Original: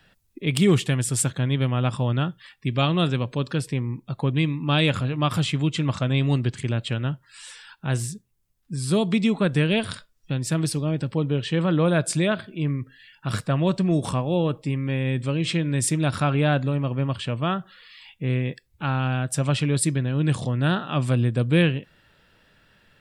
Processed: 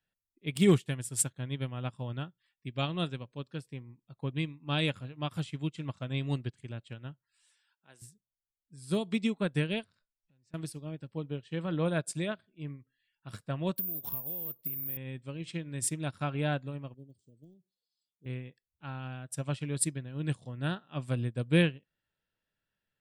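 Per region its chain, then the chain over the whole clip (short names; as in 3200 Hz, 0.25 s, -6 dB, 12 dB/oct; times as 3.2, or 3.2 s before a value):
7.47–8.02 HPF 200 Hz + low shelf 310 Hz -9 dB
9.84–10.54 LPF 6400 Hz 24 dB/oct + bell 3300 Hz -10.5 dB 0.2 oct + compressor 8:1, threshold -39 dBFS
13.76–14.97 careless resampling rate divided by 3×, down filtered, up zero stuff + compressor 16:1, threshold -22 dBFS
16.94–18.26 weighting filter D + de-esser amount 90% + Chebyshev band-stop 410–6400 Hz, order 3
whole clip: high shelf 9700 Hz +9.5 dB; notch 1200 Hz, Q 21; upward expander 2.5:1, over -32 dBFS; gain -3 dB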